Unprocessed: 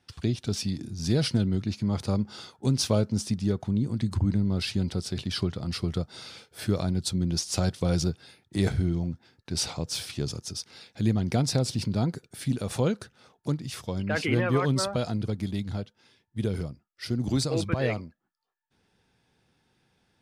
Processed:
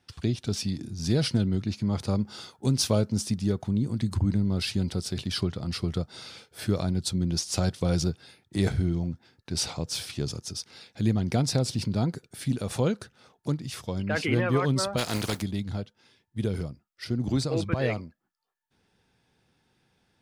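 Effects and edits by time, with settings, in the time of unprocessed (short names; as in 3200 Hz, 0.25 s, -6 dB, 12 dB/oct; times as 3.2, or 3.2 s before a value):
2.2–5.41 high shelf 8900 Hz +6 dB
14.97–15.41 spectral contrast lowered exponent 0.47
17.04–17.73 high shelf 5000 Hz -7 dB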